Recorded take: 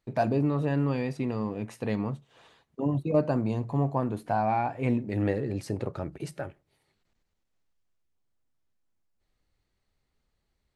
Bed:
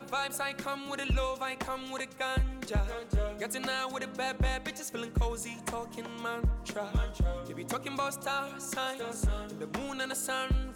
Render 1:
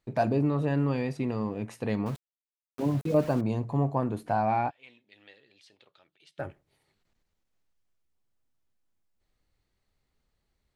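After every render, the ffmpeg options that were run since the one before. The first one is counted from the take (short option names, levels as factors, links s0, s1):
-filter_complex "[0:a]asettb=1/sr,asplit=3[s0][s1][s2];[s0]atrim=end=2.064[s3];[s1]atrim=start=2.06:end=3.41,asetpts=PTS-STARTPTS,afade=t=in:d=0.004:c=qsin,afade=t=out:st=1.346:d=0.004:c=qsin,aeval=exprs='val(0)*gte(abs(val(0)),0.0106)':c=same[s4];[s2]atrim=start=3.406[s5];[s3][s4]acrossfade=d=0.004:c1=hsin:c2=qsin[s6];[s6][s5]acrossfade=d=0.004:c1=qsin:c2=hsin,asplit=3[s7][s8][s9];[s7]afade=t=out:st=4.69:d=0.02[s10];[s8]bandpass=f=3400:t=q:w=4.7,afade=t=in:st=4.69:d=0.02,afade=t=out:st=6.38:d=0.02[s11];[s9]afade=t=in:st=6.38:d=0.02[s12];[s10][s11][s12]amix=inputs=3:normalize=0"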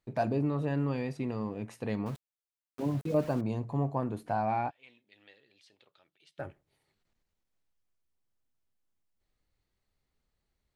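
-af "volume=0.631"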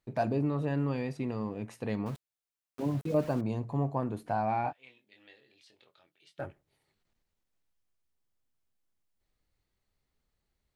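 -filter_complex "[0:a]asettb=1/sr,asplit=3[s0][s1][s2];[s0]atrim=end=4.624[s3];[s1]atrim=start=4.62:end=6.45,asetpts=PTS-STARTPTS,afade=t=in:d=0.004:c=qsin,afade=t=out:st=1.826:d=0.004:c=qsin,asplit=2[s4][s5];[s5]adelay=23,volume=0.562[s6];[s4][s6]amix=inputs=2:normalize=0,atrim=end_sample=80703[s7];[s2]atrim=start=6.446[s8];[s3][s7]acrossfade=d=0.004:c1=hsin:c2=qsin[s9];[s9][s8]acrossfade=d=0.004:c1=qsin:c2=hsin"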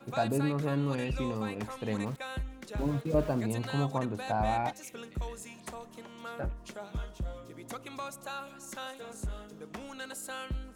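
-filter_complex "[1:a]volume=0.447[s0];[0:a][s0]amix=inputs=2:normalize=0"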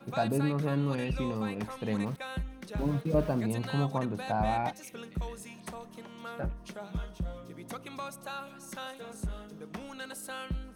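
-af "equalizer=f=180:w=6.1:g=11,bandreject=f=7200:w=5.8"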